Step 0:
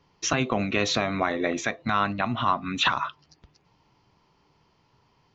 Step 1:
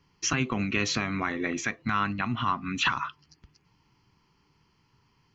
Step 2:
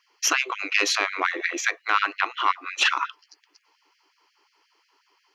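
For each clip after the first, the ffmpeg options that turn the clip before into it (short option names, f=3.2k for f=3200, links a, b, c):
-af "equalizer=f=620:w=1.6:g=-14,bandreject=f=3.7k:w=5.5"
-af "aeval=exprs='0.237*(cos(1*acos(clip(val(0)/0.237,-1,1)))-cos(1*PI/2))+0.075*(cos(2*acos(clip(val(0)/0.237,-1,1)))-cos(2*PI/2))':c=same,afftfilt=real='re*gte(b*sr/1024,270*pow(1600/270,0.5+0.5*sin(2*PI*5.6*pts/sr)))':imag='im*gte(b*sr/1024,270*pow(1600/270,0.5+0.5*sin(2*PI*5.6*pts/sr)))':win_size=1024:overlap=0.75,volume=6dB"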